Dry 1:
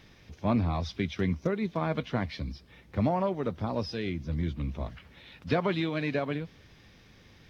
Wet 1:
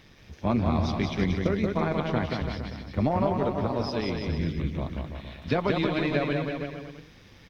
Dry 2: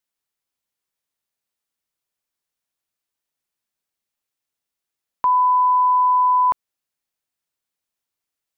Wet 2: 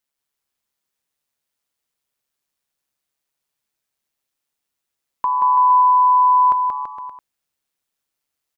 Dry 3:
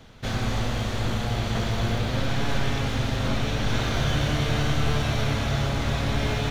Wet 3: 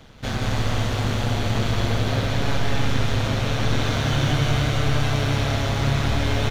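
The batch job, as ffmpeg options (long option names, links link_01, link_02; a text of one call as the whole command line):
ffmpeg -i in.wav -filter_complex "[0:a]acompressor=threshold=-20dB:ratio=4,tremolo=f=140:d=0.519,asplit=2[link_01][link_02];[link_02]aecho=0:1:180|333|463|573.6|667.6:0.631|0.398|0.251|0.158|0.1[link_03];[link_01][link_03]amix=inputs=2:normalize=0,volume=4dB" out.wav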